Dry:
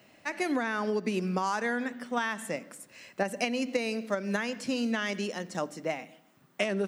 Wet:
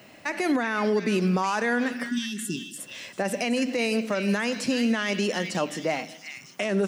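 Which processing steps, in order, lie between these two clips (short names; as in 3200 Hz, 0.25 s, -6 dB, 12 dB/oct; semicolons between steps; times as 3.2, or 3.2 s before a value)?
spectral delete 2.09–2.78, 420–2600 Hz; limiter -24.5 dBFS, peak gain reduction 10.5 dB; delay with a stepping band-pass 0.372 s, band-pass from 2600 Hz, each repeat 0.7 oct, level -5 dB; gain +8.5 dB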